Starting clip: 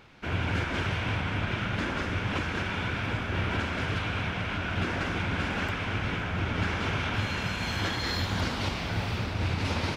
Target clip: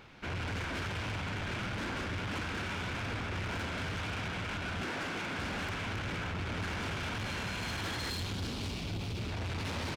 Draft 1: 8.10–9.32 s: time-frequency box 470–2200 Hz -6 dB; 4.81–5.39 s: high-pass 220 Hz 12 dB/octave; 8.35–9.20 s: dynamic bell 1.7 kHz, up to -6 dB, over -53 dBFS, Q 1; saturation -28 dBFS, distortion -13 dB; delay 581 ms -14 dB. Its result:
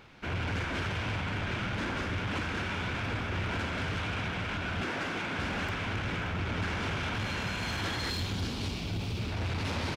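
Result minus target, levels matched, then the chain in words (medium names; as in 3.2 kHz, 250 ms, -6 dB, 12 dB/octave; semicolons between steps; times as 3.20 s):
saturation: distortion -5 dB
8.10–9.32 s: time-frequency box 470–2200 Hz -6 dB; 4.81–5.39 s: high-pass 220 Hz 12 dB/octave; 8.35–9.20 s: dynamic bell 1.7 kHz, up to -6 dB, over -53 dBFS, Q 1; saturation -34 dBFS, distortion -8 dB; delay 581 ms -14 dB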